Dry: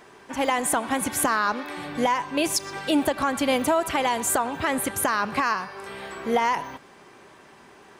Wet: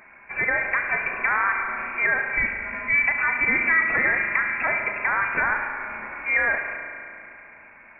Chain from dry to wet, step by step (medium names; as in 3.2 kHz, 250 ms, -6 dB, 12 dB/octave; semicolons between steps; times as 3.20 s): spring tank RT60 2.7 s, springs 35 ms, chirp 75 ms, DRR 3.5 dB; frequency inversion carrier 2.6 kHz